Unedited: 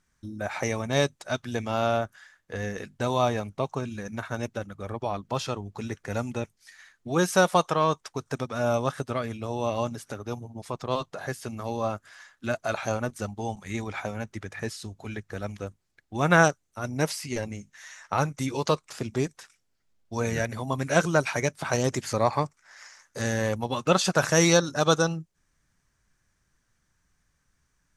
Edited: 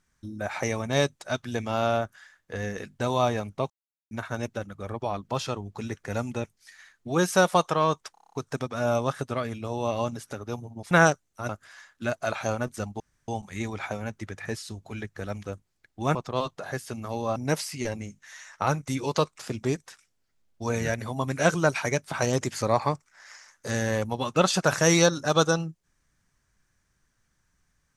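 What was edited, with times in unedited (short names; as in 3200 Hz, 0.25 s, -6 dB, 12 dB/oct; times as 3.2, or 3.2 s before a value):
3.7–4.11 mute
8.12 stutter 0.03 s, 8 plays
10.7–11.91 swap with 16.29–16.87
13.42 insert room tone 0.28 s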